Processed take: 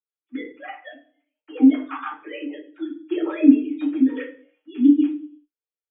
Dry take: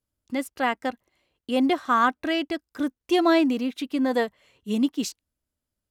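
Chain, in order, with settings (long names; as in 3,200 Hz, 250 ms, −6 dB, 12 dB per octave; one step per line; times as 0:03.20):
three sine waves on the formant tracks
comb filter 6.6 ms, depth 61%
rotating-speaker cabinet horn 6.7 Hz
convolution reverb RT60 0.50 s, pre-delay 3 ms, DRR −6.5 dB
every ending faded ahead of time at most 590 dB per second
level −8 dB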